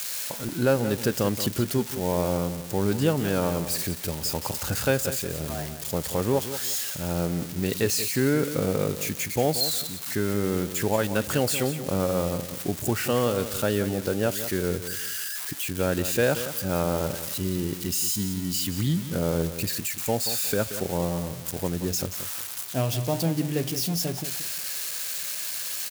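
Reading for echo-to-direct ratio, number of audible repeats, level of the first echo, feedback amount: -11.0 dB, 3, -11.5 dB, 28%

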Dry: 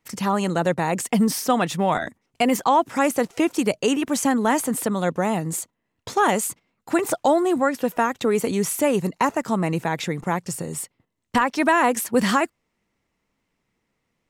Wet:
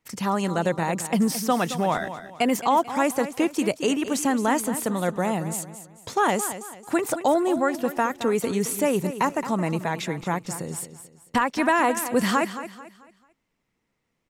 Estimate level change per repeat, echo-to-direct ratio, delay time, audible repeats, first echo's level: -9.0 dB, -11.5 dB, 220 ms, 3, -12.0 dB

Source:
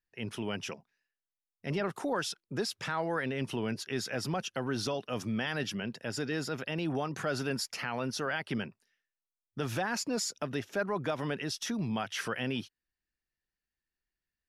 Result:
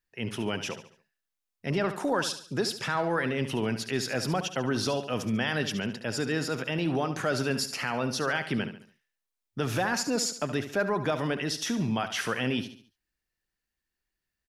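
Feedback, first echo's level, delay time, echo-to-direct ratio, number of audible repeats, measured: 41%, -11.0 dB, 71 ms, -10.0 dB, 4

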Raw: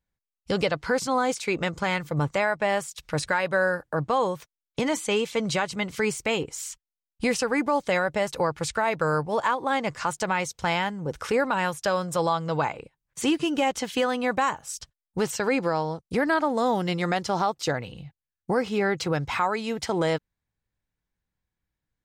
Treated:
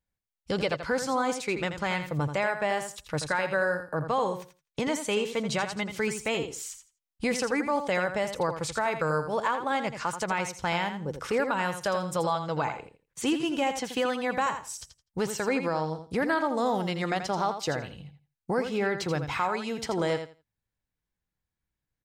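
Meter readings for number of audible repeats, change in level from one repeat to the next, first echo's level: 2, -15.0 dB, -9.0 dB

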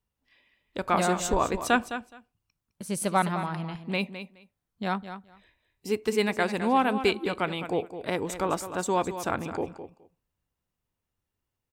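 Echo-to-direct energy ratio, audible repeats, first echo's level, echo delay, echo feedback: -11.0 dB, 2, -11.0 dB, 210 ms, 15%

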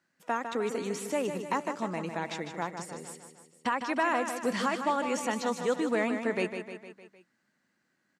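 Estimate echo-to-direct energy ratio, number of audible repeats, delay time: -6.5 dB, 5, 153 ms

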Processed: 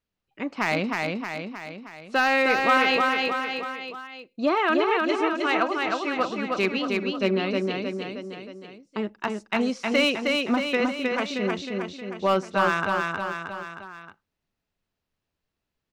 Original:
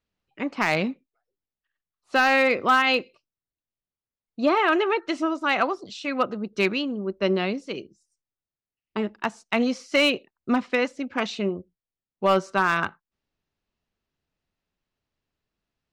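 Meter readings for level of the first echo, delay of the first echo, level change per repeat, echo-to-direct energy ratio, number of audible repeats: -3.0 dB, 313 ms, -5.0 dB, -1.5 dB, 4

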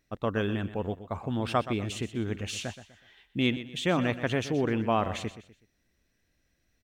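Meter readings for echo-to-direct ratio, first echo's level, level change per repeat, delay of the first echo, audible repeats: -12.5 dB, -13.0 dB, -9.0 dB, 124 ms, 3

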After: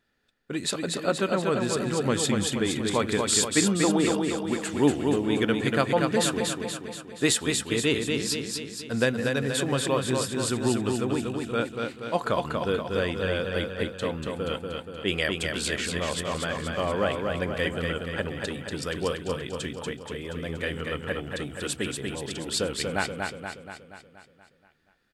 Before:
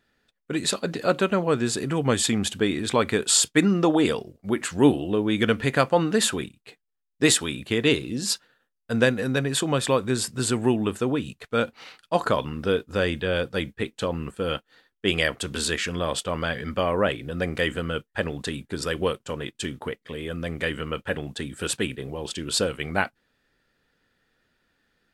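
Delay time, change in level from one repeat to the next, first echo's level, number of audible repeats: 238 ms, -5.0 dB, -4.0 dB, 7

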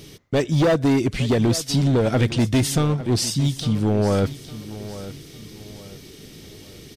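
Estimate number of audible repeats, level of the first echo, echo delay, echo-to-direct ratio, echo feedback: 3, -15.0 dB, 855 ms, -14.5 dB, 37%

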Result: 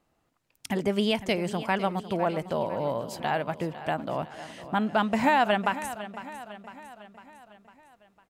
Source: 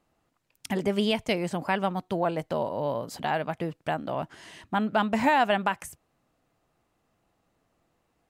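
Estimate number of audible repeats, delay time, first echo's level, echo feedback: 4, 503 ms, -14.0 dB, 54%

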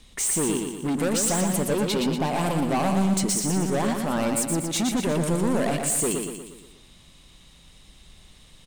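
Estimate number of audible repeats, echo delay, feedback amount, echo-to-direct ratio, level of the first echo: 6, 119 ms, 51%, -3.5 dB, -5.0 dB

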